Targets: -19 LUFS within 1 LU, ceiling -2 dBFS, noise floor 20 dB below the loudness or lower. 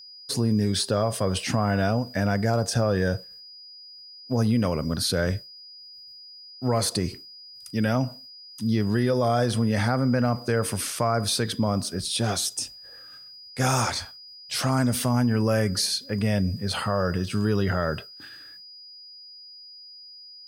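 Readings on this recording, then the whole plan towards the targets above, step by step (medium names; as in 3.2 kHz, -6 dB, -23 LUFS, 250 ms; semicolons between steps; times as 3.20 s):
steady tone 4.9 kHz; tone level -43 dBFS; loudness -25.0 LUFS; peak level -11.0 dBFS; loudness target -19.0 LUFS
-> band-stop 4.9 kHz, Q 30; trim +6 dB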